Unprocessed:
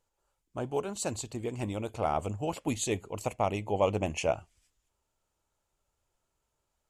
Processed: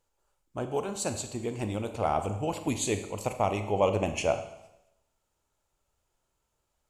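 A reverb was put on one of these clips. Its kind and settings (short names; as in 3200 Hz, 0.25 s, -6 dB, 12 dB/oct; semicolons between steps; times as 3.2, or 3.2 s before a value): Schroeder reverb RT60 0.85 s, combs from 30 ms, DRR 8 dB; gain +1.5 dB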